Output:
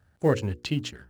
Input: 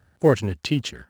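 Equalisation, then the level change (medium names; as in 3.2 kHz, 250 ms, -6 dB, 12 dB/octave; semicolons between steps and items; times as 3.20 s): bass shelf 120 Hz +4 dB; hum notches 60/120/180/240/300/360/420/480/540 Hz; -5.0 dB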